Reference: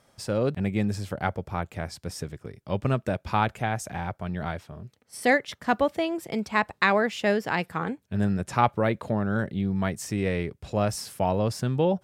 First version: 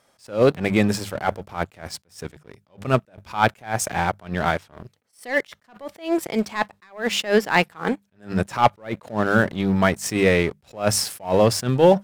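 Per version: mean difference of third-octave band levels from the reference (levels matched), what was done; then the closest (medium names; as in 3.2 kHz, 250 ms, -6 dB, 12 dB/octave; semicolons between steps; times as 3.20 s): 8.5 dB: bass shelf 250 Hz -9 dB; hum notches 50/100/150/200 Hz; waveshaping leveller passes 2; attacks held to a fixed rise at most 190 dB/s; trim +5.5 dB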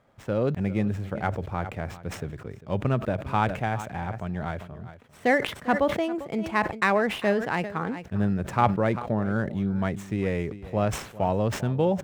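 4.5 dB: median filter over 9 samples; treble shelf 4 kHz -6.5 dB; delay 398 ms -17.5 dB; decay stretcher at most 100 dB/s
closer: second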